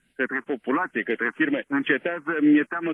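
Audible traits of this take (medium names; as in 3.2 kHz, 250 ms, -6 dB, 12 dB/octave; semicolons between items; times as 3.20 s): a quantiser's noise floor 12-bit, dither none; phasing stages 4, 2.1 Hz, lowest notch 540–1100 Hz; tremolo triangle 1.7 Hz, depth 50%; AAC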